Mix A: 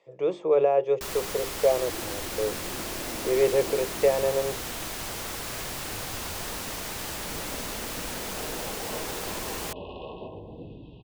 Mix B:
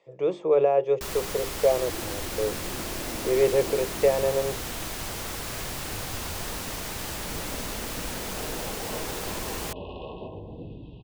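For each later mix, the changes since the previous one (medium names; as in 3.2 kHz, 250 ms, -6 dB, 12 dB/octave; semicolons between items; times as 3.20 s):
master: add bass shelf 180 Hz +5 dB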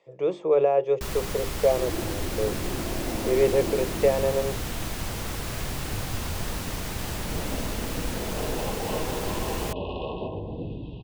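first sound: add tone controls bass +7 dB, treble -2 dB; second sound +6.0 dB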